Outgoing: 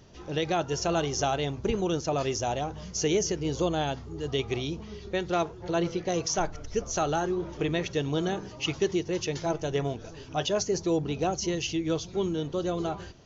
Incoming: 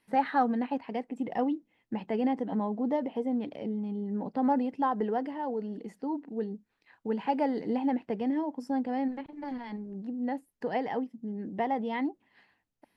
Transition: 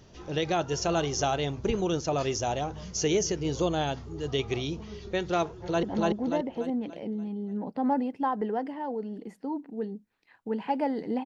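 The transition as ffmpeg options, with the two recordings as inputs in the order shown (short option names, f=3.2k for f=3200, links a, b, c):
-filter_complex "[0:a]apad=whole_dur=11.25,atrim=end=11.25,atrim=end=5.832[a];[1:a]atrim=start=2.418:end=7.84[b];[a][b]acrossfade=d=0.004:c1=hsin:c2=hsin,asplit=2[c][d];[d]afade=t=in:st=5.46:d=0.01,afade=t=out:st=5.83:d=0.01,aecho=0:1:290|580|870|1160|1450|1740:0.944061|0.424827|0.191172|0.0860275|0.0387124|0.0174206[e];[c][e]amix=inputs=2:normalize=0"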